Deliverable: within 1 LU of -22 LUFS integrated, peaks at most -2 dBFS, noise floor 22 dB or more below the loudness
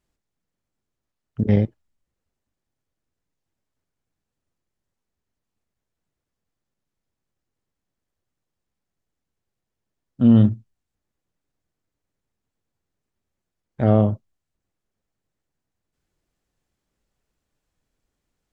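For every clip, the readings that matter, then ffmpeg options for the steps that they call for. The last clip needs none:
loudness -19.0 LUFS; peak -4.0 dBFS; loudness target -22.0 LUFS
-> -af "volume=-3dB"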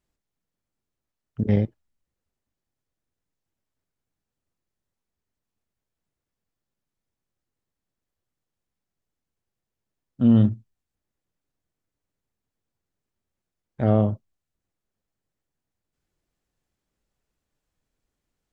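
loudness -22.0 LUFS; peak -7.0 dBFS; noise floor -86 dBFS

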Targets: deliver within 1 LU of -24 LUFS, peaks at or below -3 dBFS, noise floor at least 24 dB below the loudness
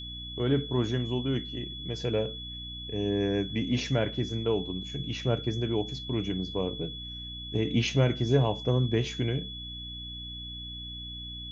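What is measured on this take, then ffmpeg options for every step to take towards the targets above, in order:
hum 60 Hz; harmonics up to 300 Hz; hum level -40 dBFS; steady tone 3400 Hz; tone level -39 dBFS; loudness -30.5 LUFS; peak -11.5 dBFS; loudness target -24.0 LUFS
-> -af "bandreject=f=60:t=h:w=6,bandreject=f=120:t=h:w=6,bandreject=f=180:t=h:w=6,bandreject=f=240:t=h:w=6,bandreject=f=300:t=h:w=6"
-af "bandreject=f=3.4k:w=30"
-af "volume=6.5dB"

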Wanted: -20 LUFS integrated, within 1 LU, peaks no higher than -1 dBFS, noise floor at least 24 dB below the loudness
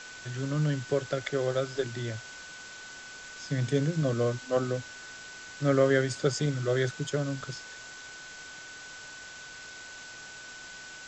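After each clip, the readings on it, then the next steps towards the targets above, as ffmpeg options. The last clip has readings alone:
steady tone 1500 Hz; tone level -45 dBFS; noise floor -45 dBFS; noise floor target -54 dBFS; loudness -30.0 LUFS; peak -12.0 dBFS; loudness target -20.0 LUFS
-> -af "bandreject=f=1.5k:w=30"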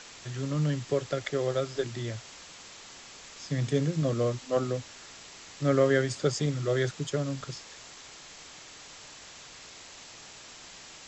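steady tone none; noise floor -49 dBFS; noise floor target -54 dBFS
-> -af "afftdn=nr=6:nf=-49"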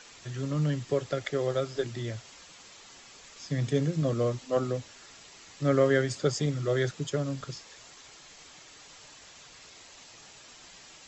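noise floor -52 dBFS; noise floor target -54 dBFS
-> -af "afftdn=nr=6:nf=-52"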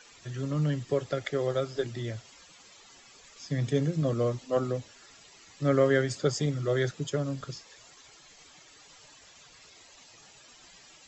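noise floor -55 dBFS; loudness -29.5 LUFS; peak -12.0 dBFS; loudness target -20.0 LUFS
-> -af "volume=9.5dB"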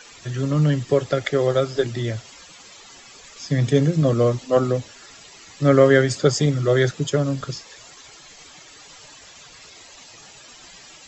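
loudness -20.0 LUFS; peak -2.5 dBFS; noise floor -46 dBFS

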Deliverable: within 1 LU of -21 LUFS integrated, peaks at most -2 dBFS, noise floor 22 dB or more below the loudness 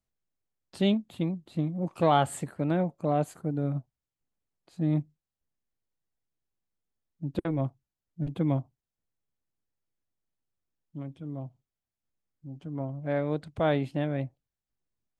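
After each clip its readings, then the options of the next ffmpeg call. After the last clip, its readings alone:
loudness -30.0 LUFS; peak -10.0 dBFS; loudness target -21.0 LUFS
-> -af "volume=9dB,alimiter=limit=-2dB:level=0:latency=1"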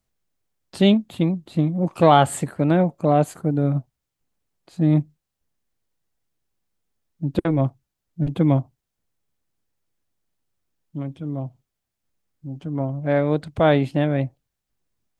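loudness -21.5 LUFS; peak -2.0 dBFS; noise floor -82 dBFS

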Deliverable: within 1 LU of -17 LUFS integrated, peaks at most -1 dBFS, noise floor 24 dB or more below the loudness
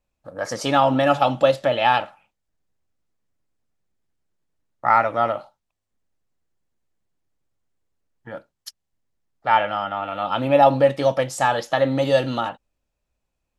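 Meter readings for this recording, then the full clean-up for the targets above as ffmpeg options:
loudness -20.0 LUFS; peak -3.0 dBFS; loudness target -17.0 LUFS
-> -af "volume=3dB,alimiter=limit=-1dB:level=0:latency=1"

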